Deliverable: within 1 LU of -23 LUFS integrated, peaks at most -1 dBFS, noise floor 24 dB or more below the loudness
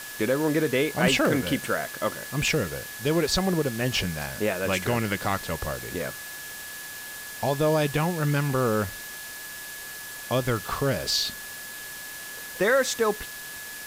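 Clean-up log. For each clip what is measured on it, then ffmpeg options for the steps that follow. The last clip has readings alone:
steady tone 1700 Hz; tone level -40 dBFS; noise floor -39 dBFS; noise floor target -51 dBFS; loudness -27.0 LUFS; peak -8.5 dBFS; loudness target -23.0 LUFS
-> -af "bandreject=f=1.7k:w=30"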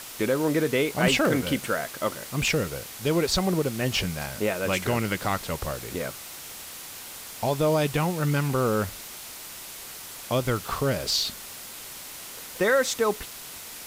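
steady tone none; noise floor -41 dBFS; noise floor target -50 dBFS
-> -af "afftdn=nr=9:nf=-41"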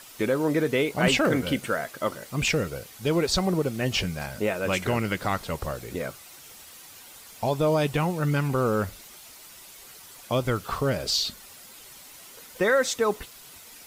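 noise floor -47 dBFS; noise floor target -50 dBFS
-> -af "afftdn=nr=6:nf=-47"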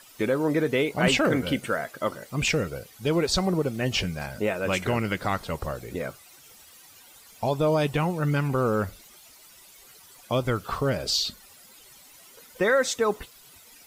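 noise floor -52 dBFS; loudness -26.0 LUFS; peak -9.0 dBFS; loudness target -23.0 LUFS
-> -af "volume=3dB"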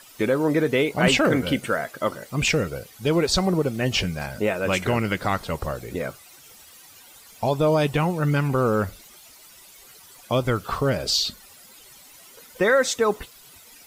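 loudness -23.0 LUFS; peak -6.0 dBFS; noise floor -49 dBFS

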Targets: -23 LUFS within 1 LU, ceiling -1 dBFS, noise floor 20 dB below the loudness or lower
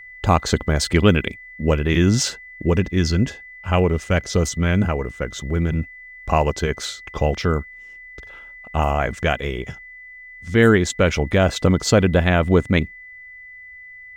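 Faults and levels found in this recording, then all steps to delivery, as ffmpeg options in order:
steady tone 2000 Hz; tone level -38 dBFS; loudness -20.0 LUFS; peak -2.0 dBFS; loudness target -23.0 LUFS
-> -af "bandreject=f=2k:w=30"
-af "volume=-3dB"

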